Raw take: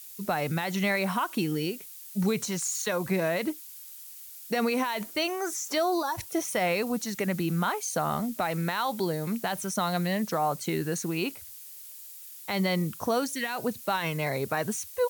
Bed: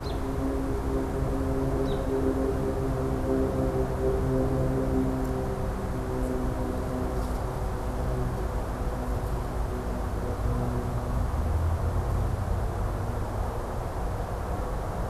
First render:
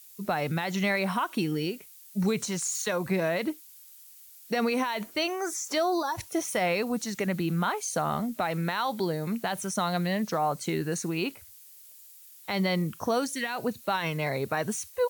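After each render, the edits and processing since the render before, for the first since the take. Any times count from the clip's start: noise print and reduce 6 dB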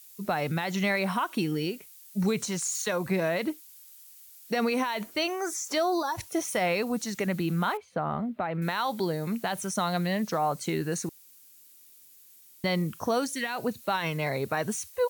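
7.77–8.62 air absorption 490 m; 11.09–12.64 room tone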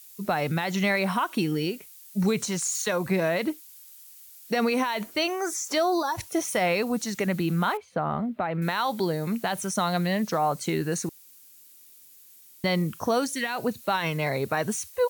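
gain +2.5 dB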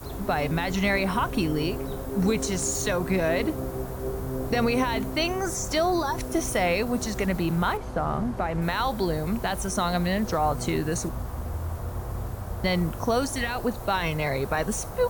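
add bed -5 dB

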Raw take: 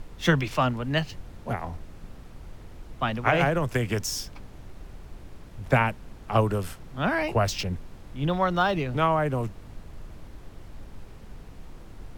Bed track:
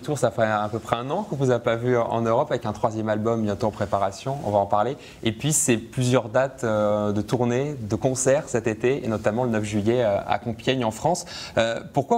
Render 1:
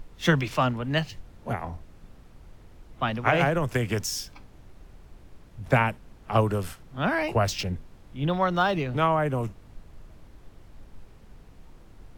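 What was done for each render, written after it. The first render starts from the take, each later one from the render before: noise print and reduce 6 dB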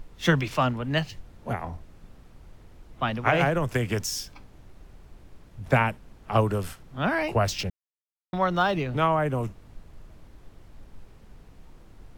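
7.7–8.33 mute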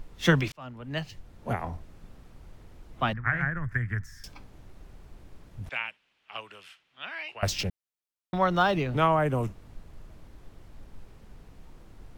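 0.52–1.53 fade in; 3.13–4.24 EQ curve 110 Hz 0 dB, 510 Hz -22 dB, 910 Hz -16 dB, 1800 Hz +5 dB, 2700 Hz -23 dB; 5.69–7.43 band-pass 2800 Hz, Q 2.5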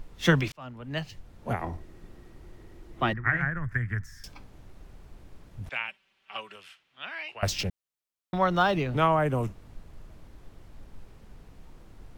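1.61–3.37 small resonant body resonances 350/1900 Hz, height 11 dB; 5.88–6.56 comb 5.2 ms, depth 61%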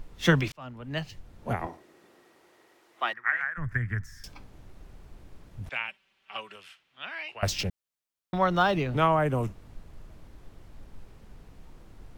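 1.66–3.57 HPF 300 Hz -> 1100 Hz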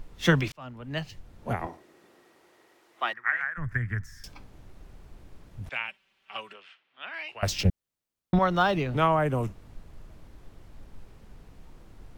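6.53–7.14 BPF 260–3400 Hz; 7.65–8.39 low shelf 450 Hz +11.5 dB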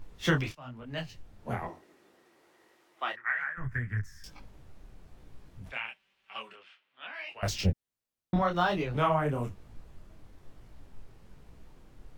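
detuned doubles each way 39 cents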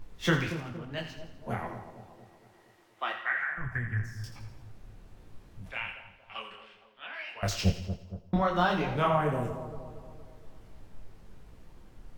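on a send: split-band echo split 970 Hz, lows 0.233 s, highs 83 ms, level -10 dB; on the sum: non-linear reverb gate 0.26 s falling, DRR 9 dB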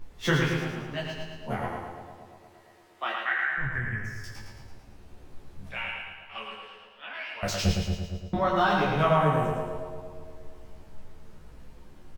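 doubler 14 ms -2.5 dB; feedback echo 0.111 s, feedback 55%, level -4.5 dB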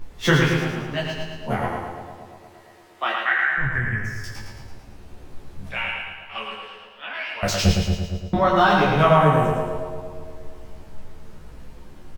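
gain +7 dB

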